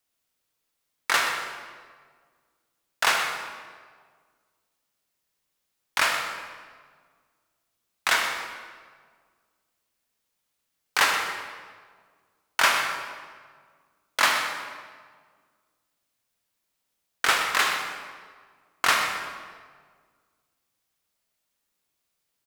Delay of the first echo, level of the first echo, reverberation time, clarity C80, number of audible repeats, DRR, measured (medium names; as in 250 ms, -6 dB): 125 ms, -11.5 dB, 1.7 s, 4.5 dB, 1, 2.0 dB